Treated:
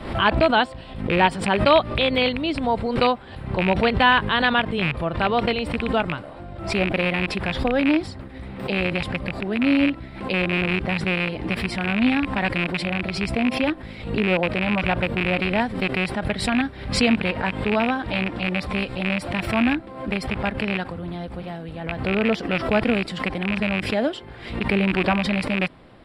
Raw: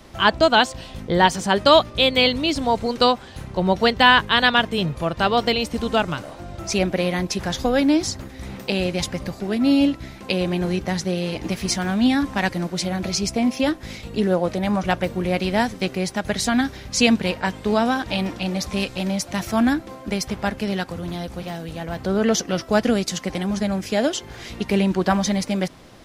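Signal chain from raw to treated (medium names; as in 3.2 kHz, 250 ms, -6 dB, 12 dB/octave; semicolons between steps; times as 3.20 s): rattle on loud lows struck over -24 dBFS, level -8 dBFS; boxcar filter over 7 samples; swell ahead of each attack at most 83 dB/s; trim -2 dB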